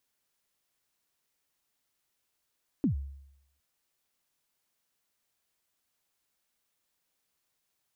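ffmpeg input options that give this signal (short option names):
-f lavfi -i "aevalsrc='0.0891*pow(10,-3*t/0.79)*sin(2*PI*(320*0.11/log(69/320)*(exp(log(69/320)*min(t,0.11)/0.11)-1)+69*max(t-0.11,0)))':d=0.76:s=44100"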